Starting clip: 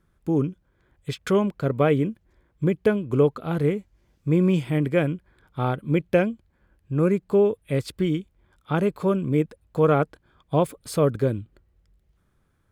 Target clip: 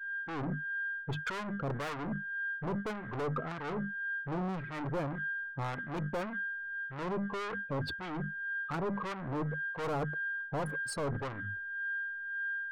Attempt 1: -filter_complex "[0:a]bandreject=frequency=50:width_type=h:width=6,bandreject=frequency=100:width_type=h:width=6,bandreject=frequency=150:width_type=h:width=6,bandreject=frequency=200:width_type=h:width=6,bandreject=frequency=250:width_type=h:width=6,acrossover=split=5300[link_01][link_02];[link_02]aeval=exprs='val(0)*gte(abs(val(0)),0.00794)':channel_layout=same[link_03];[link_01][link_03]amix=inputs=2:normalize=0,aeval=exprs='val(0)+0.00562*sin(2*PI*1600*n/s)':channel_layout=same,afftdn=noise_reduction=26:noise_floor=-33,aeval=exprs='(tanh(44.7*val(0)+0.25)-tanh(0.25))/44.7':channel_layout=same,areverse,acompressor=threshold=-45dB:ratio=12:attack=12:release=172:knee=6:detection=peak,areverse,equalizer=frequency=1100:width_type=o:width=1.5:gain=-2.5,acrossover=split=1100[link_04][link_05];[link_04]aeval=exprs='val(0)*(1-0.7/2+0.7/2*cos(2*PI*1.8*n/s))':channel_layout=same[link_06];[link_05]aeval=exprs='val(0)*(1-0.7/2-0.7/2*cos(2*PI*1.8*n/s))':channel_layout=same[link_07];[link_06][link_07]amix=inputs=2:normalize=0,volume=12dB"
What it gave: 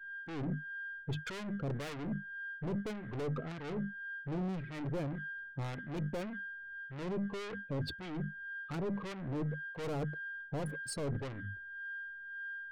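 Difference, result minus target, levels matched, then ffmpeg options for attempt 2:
1,000 Hz band −5.5 dB
-filter_complex "[0:a]bandreject=frequency=50:width_type=h:width=6,bandreject=frequency=100:width_type=h:width=6,bandreject=frequency=150:width_type=h:width=6,bandreject=frequency=200:width_type=h:width=6,bandreject=frequency=250:width_type=h:width=6,acrossover=split=5300[link_01][link_02];[link_02]aeval=exprs='val(0)*gte(abs(val(0)),0.00794)':channel_layout=same[link_03];[link_01][link_03]amix=inputs=2:normalize=0,aeval=exprs='val(0)+0.00562*sin(2*PI*1600*n/s)':channel_layout=same,afftdn=noise_reduction=26:noise_floor=-33,aeval=exprs='(tanh(44.7*val(0)+0.25)-tanh(0.25))/44.7':channel_layout=same,areverse,acompressor=threshold=-45dB:ratio=12:attack=12:release=172:knee=6:detection=peak,areverse,equalizer=frequency=1100:width_type=o:width=1.5:gain=8,acrossover=split=1100[link_04][link_05];[link_04]aeval=exprs='val(0)*(1-0.7/2+0.7/2*cos(2*PI*1.8*n/s))':channel_layout=same[link_06];[link_05]aeval=exprs='val(0)*(1-0.7/2-0.7/2*cos(2*PI*1.8*n/s))':channel_layout=same[link_07];[link_06][link_07]amix=inputs=2:normalize=0,volume=12dB"

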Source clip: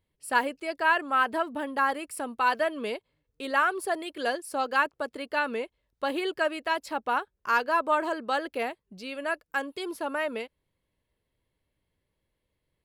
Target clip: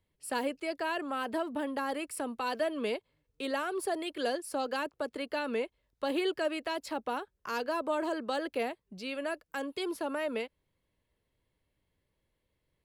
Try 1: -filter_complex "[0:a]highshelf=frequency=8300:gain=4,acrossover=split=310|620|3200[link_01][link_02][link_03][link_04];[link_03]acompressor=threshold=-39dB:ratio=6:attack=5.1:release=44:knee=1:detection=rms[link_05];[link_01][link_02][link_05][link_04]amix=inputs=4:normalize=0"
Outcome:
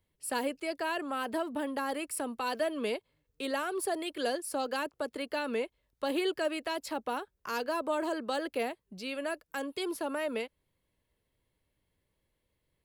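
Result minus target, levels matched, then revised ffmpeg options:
8,000 Hz band +4.0 dB
-filter_complex "[0:a]highshelf=frequency=8300:gain=-3,acrossover=split=310|620|3200[link_01][link_02][link_03][link_04];[link_03]acompressor=threshold=-39dB:ratio=6:attack=5.1:release=44:knee=1:detection=rms[link_05];[link_01][link_02][link_05][link_04]amix=inputs=4:normalize=0"

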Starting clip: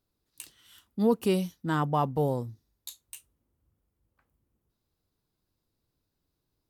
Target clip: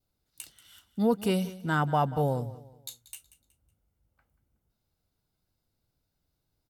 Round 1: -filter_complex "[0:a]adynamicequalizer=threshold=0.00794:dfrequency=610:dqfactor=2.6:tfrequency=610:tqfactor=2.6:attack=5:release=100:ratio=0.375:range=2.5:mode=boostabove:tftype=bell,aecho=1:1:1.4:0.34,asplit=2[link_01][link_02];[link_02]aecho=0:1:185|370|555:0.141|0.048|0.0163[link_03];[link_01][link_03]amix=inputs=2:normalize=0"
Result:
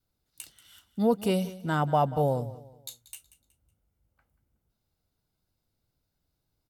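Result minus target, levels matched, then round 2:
2,000 Hz band −4.5 dB
-filter_complex "[0:a]adynamicequalizer=threshold=0.00794:dfrequency=1600:dqfactor=2.6:tfrequency=1600:tqfactor=2.6:attack=5:release=100:ratio=0.375:range=2.5:mode=boostabove:tftype=bell,aecho=1:1:1.4:0.34,asplit=2[link_01][link_02];[link_02]aecho=0:1:185|370|555:0.141|0.048|0.0163[link_03];[link_01][link_03]amix=inputs=2:normalize=0"

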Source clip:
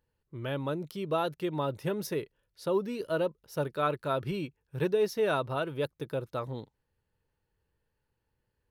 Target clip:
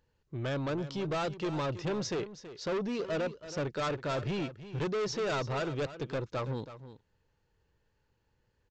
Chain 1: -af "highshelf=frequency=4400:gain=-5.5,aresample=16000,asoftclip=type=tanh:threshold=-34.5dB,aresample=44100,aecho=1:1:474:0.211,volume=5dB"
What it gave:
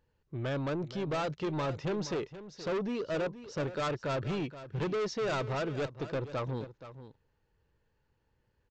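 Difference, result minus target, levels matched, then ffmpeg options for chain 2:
echo 148 ms late; 8,000 Hz band −3.0 dB
-af "highshelf=frequency=4400:gain=2,aresample=16000,asoftclip=type=tanh:threshold=-34.5dB,aresample=44100,aecho=1:1:326:0.211,volume=5dB"

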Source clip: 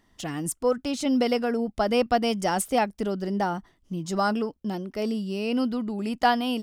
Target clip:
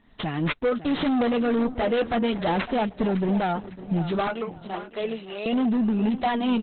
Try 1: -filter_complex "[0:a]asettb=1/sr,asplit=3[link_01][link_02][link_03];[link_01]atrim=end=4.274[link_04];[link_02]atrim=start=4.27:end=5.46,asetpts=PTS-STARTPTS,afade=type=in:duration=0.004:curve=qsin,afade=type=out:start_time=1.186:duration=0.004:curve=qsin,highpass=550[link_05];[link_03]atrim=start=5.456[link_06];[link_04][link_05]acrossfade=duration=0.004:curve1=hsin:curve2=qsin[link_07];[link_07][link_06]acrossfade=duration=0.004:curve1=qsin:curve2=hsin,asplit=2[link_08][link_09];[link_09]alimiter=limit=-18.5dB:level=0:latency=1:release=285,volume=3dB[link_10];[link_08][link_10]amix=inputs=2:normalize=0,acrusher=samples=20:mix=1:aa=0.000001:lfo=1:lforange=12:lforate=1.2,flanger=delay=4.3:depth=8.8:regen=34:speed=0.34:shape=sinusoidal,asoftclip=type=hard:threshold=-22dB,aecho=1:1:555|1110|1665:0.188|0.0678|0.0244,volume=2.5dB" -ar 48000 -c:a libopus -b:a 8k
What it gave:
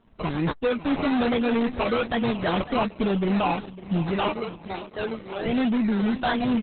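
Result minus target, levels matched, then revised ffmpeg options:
sample-and-hold swept by an LFO: distortion +10 dB
-filter_complex "[0:a]asettb=1/sr,asplit=3[link_01][link_02][link_03];[link_01]atrim=end=4.274[link_04];[link_02]atrim=start=4.27:end=5.46,asetpts=PTS-STARTPTS,afade=type=in:duration=0.004:curve=qsin,afade=type=out:start_time=1.186:duration=0.004:curve=qsin,highpass=550[link_05];[link_03]atrim=start=5.456[link_06];[link_04][link_05]acrossfade=duration=0.004:curve1=hsin:curve2=qsin[link_07];[link_07][link_06]acrossfade=duration=0.004:curve1=qsin:curve2=hsin,asplit=2[link_08][link_09];[link_09]alimiter=limit=-18.5dB:level=0:latency=1:release=285,volume=3dB[link_10];[link_08][link_10]amix=inputs=2:normalize=0,acrusher=samples=5:mix=1:aa=0.000001:lfo=1:lforange=3:lforate=1.2,flanger=delay=4.3:depth=8.8:regen=34:speed=0.34:shape=sinusoidal,asoftclip=type=hard:threshold=-22dB,aecho=1:1:555|1110|1665:0.188|0.0678|0.0244,volume=2.5dB" -ar 48000 -c:a libopus -b:a 8k

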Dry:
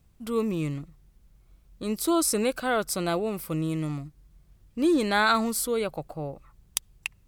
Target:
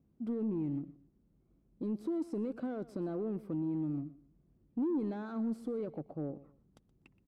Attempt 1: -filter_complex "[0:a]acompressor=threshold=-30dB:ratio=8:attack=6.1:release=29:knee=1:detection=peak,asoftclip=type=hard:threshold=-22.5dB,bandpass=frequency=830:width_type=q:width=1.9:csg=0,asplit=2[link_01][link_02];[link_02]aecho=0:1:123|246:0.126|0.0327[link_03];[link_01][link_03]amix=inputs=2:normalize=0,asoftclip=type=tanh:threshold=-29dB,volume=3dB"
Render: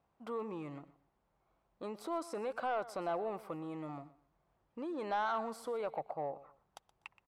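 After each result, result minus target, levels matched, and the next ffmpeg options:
1,000 Hz band +16.0 dB; hard clipping: distortion −9 dB
-filter_complex "[0:a]acompressor=threshold=-30dB:ratio=8:attack=6.1:release=29:knee=1:detection=peak,asoftclip=type=hard:threshold=-22.5dB,bandpass=frequency=270:width_type=q:width=1.9:csg=0,asplit=2[link_01][link_02];[link_02]aecho=0:1:123|246:0.126|0.0327[link_03];[link_01][link_03]amix=inputs=2:normalize=0,asoftclip=type=tanh:threshold=-29dB,volume=3dB"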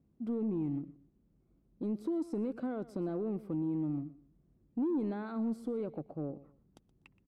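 hard clipping: distortion −9 dB
-filter_complex "[0:a]acompressor=threshold=-30dB:ratio=8:attack=6.1:release=29:knee=1:detection=peak,asoftclip=type=hard:threshold=-28.5dB,bandpass=frequency=270:width_type=q:width=1.9:csg=0,asplit=2[link_01][link_02];[link_02]aecho=0:1:123|246:0.126|0.0327[link_03];[link_01][link_03]amix=inputs=2:normalize=0,asoftclip=type=tanh:threshold=-29dB,volume=3dB"

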